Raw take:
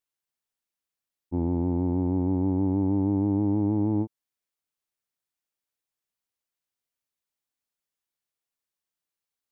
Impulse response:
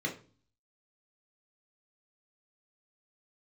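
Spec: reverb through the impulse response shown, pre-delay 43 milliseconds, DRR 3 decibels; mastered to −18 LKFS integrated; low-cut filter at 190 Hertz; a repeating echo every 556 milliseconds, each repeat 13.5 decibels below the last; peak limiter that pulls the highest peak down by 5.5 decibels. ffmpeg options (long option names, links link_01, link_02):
-filter_complex "[0:a]highpass=190,alimiter=limit=-23.5dB:level=0:latency=1,aecho=1:1:556|1112:0.211|0.0444,asplit=2[link_01][link_02];[1:a]atrim=start_sample=2205,adelay=43[link_03];[link_02][link_03]afir=irnorm=-1:irlink=0,volume=-8dB[link_04];[link_01][link_04]amix=inputs=2:normalize=0,volume=10dB"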